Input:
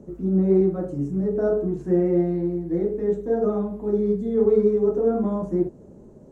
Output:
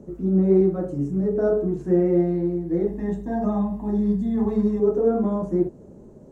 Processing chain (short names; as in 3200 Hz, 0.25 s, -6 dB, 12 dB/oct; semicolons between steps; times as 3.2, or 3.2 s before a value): 2.87–4.8 comb 1.1 ms, depth 83%; gain +1 dB